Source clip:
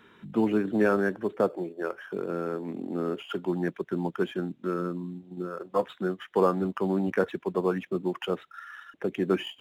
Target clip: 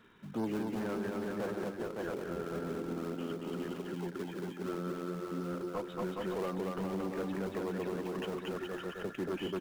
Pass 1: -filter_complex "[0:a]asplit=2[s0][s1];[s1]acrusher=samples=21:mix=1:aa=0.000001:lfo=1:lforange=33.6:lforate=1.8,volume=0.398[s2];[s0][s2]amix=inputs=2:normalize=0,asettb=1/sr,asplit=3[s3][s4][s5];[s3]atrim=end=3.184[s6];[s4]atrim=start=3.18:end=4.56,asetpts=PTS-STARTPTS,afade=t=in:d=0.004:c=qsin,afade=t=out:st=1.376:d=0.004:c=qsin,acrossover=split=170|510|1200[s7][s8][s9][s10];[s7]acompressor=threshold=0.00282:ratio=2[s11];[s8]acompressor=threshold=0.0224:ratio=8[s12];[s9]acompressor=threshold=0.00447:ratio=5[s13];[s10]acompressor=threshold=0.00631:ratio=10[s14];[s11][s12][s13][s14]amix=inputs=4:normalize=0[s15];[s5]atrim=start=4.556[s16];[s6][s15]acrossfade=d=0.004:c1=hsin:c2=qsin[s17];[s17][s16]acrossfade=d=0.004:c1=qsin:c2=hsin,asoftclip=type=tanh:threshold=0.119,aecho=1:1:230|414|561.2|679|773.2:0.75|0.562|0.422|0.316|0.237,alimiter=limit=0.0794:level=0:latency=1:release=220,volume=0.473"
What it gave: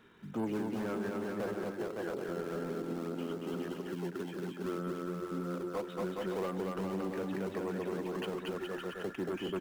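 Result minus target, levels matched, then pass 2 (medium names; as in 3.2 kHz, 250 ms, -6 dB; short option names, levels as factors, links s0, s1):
decimation with a swept rate: distortion -7 dB
-filter_complex "[0:a]asplit=2[s0][s1];[s1]acrusher=samples=42:mix=1:aa=0.000001:lfo=1:lforange=67.2:lforate=1.8,volume=0.398[s2];[s0][s2]amix=inputs=2:normalize=0,asettb=1/sr,asplit=3[s3][s4][s5];[s3]atrim=end=3.184[s6];[s4]atrim=start=3.18:end=4.56,asetpts=PTS-STARTPTS,afade=t=in:d=0.004:c=qsin,afade=t=out:st=1.376:d=0.004:c=qsin,acrossover=split=170|510|1200[s7][s8][s9][s10];[s7]acompressor=threshold=0.00282:ratio=2[s11];[s8]acompressor=threshold=0.0224:ratio=8[s12];[s9]acompressor=threshold=0.00447:ratio=5[s13];[s10]acompressor=threshold=0.00631:ratio=10[s14];[s11][s12][s13][s14]amix=inputs=4:normalize=0[s15];[s5]atrim=start=4.556[s16];[s6][s15]acrossfade=d=0.004:c1=hsin:c2=qsin[s17];[s17][s16]acrossfade=d=0.004:c1=qsin:c2=hsin,asoftclip=type=tanh:threshold=0.119,aecho=1:1:230|414|561.2|679|773.2:0.75|0.562|0.422|0.316|0.237,alimiter=limit=0.0794:level=0:latency=1:release=220,volume=0.473"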